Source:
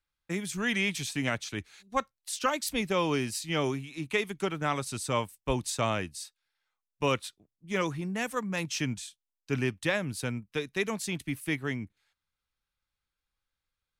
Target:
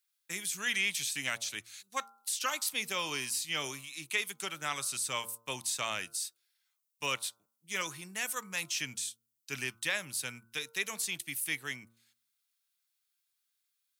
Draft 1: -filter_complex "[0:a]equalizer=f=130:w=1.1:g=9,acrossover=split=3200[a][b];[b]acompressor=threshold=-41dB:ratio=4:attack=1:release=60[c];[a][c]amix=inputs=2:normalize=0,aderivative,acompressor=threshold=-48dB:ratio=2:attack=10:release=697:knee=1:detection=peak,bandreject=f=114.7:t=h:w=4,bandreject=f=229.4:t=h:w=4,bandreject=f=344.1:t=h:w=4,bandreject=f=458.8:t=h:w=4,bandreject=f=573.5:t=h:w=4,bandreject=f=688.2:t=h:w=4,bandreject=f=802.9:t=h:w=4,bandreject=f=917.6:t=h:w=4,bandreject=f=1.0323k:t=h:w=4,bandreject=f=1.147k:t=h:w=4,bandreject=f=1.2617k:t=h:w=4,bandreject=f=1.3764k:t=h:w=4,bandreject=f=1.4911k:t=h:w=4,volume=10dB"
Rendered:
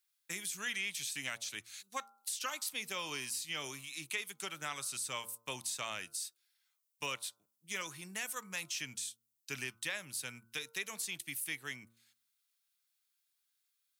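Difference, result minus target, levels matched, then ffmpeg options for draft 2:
compressor: peak gain reduction +7.5 dB
-filter_complex "[0:a]equalizer=f=130:w=1.1:g=9,acrossover=split=3200[a][b];[b]acompressor=threshold=-41dB:ratio=4:attack=1:release=60[c];[a][c]amix=inputs=2:normalize=0,aderivative,bandreject=f=114.7:t=h:w=4,bandreject=f=229.4:t=h:w=4,bandreject=f=344.1:t=h:w=4,bandreject=f=458.8:t=h:w=4,bandreject=f=573.5:t=h:w=4,bandreject=f=688.2:t=h:w=4,bandreject=f=802.9:t=h:w=4,bandreject=f=917.6:t=h:w=4,bandreject=f=1.0323k:t=h:w=4,bandreject=f=1.147k:t=h:w=4,bandreject=f=1.2617k:t=h:w=4,bandreject=f=1.3764k:t=h:w=4,bandreject=f=1.4911k:t=h:w=4,volume=10dB"

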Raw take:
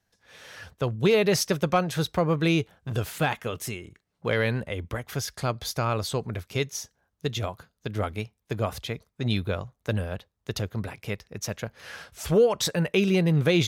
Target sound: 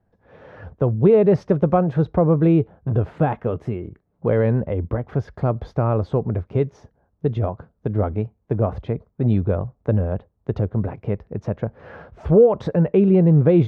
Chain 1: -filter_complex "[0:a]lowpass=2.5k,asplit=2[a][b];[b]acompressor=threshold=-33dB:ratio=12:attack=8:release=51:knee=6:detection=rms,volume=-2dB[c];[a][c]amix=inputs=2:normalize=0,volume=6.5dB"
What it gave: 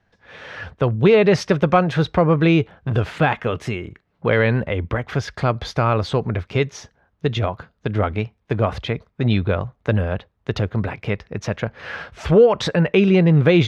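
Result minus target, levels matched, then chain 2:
2000 Hz band +14.0 dB
-filter_complex "[0:a]lowpass=720,asplit=2[a][b];[b]acompressor=threshold=-33dB:ratio=12:attack=8:release=51:knee=6:detection=rms,volume=-2dB[c];[a][c]amix=inputs=2:normalize=0,volume=6.5dB"

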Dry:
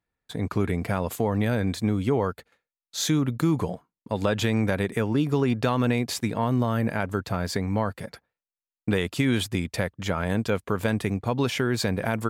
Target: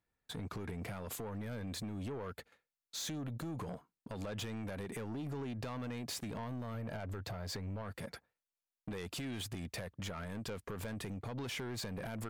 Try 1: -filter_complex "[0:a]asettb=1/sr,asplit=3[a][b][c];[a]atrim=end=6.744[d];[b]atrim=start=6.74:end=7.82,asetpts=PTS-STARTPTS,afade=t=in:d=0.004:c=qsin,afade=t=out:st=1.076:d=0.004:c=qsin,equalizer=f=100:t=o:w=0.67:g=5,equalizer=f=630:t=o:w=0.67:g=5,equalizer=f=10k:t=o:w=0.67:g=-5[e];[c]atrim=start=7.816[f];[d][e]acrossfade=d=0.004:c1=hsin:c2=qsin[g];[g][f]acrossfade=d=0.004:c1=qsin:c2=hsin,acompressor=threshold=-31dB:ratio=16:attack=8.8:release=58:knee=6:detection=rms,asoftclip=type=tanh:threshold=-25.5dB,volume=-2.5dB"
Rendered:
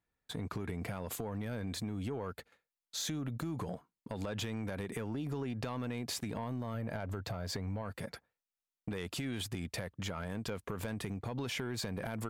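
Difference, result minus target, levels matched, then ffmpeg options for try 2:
soft clip: distortion -9 dB
-filter_complex "[0:a]asettb=1/sr,asplit=3[a][b][c];[a]atrim=end=6.744[d];[b]atrim=start=6.74:end=7.82,asetpts=PTS-STARTPTS,afade=t=in:d=0.004:c=qsin,afade=t=out:st=1.076:d=0.004:c=qsin,equalizer=f=100:t=o:w=0.67:g=5,equalizer=f=630:t=o:w=0.67:g=5,equalizer=f=10k:t=o:w=0.67:g=-5[e];[c]atrim=start=7.816[f];[d][e]acrossfade=d=0.004:c1=hsin:c2=qsin[g];[g][f]acrossfade=d=0.004:c1=qsin:c2=hsin,acompressor=threshold=-31dB:ratio=16:attack=8.8:release=58:knee=6:detection=rms,asoftclip=type=tanh:threshold=-34dB,volume=-2.5dB"

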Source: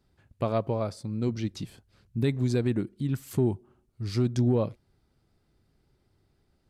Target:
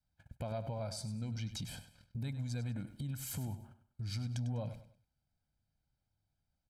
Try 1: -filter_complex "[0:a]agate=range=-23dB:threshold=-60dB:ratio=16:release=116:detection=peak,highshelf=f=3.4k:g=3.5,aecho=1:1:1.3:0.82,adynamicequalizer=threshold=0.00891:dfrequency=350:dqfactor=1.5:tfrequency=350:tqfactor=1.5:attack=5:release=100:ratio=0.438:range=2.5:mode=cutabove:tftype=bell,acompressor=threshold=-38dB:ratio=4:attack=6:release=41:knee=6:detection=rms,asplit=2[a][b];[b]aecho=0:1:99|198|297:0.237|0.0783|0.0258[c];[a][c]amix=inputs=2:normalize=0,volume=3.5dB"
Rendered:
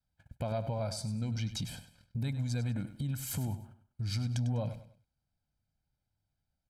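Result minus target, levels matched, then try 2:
compressor: peak gain reduction -5 dB
-filter_complex "[0:a]agate=range=-23dB:threshold=-60dB:ratio=16:release=116:detection=peak,highshelf=f=3.4k:g=3.5,aecho=1:1:1.3:0.82,adynamicequalizer=threshold=0.00891:dfrequency=350:dqfactor=1.5:tfrequency=350:tqfactor=1.5:attack=5:release=100:ratio=0.438:range=2.5:mode=cutabove:tftype=bell,acompressor=threshold=-45dB:ratio=4:attack=6:release=41:knee=6:detection=rms,asplit=2[a][b];[b]aecho=0:1:99|198|297:0.237|0.0783|0.0258[c];[a][c]amix=inputs=2:normalize=0,volume=3.5dB"

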